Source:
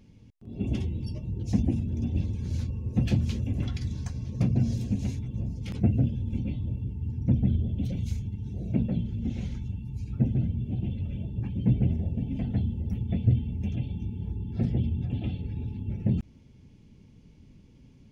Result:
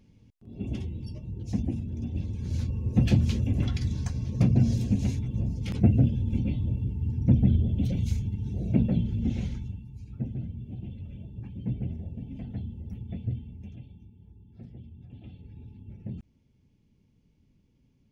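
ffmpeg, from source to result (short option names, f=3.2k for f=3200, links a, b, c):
-af "volume=10dB,afade=t=in:st=2.2:d=0.66:silence=0.446684,afade=t=out:st=9.33:d=0.56:silence=0.281838,afade=t=out:st=13.12:d=1:silence=0.281838,afade=t=in:st=14.92:d=0.67:silence=0.446684"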